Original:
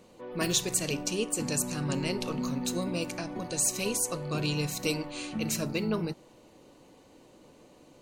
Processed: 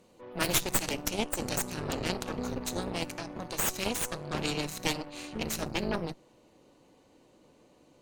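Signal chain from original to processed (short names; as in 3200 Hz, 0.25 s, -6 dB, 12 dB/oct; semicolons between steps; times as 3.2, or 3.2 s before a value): high shelf 9300 Hz +2.5 dB, from 1.08 s -3.5 dB; added harmonics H 3 -9 dB, 4 -7 dB, 5 -18 dB, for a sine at -13 dBFS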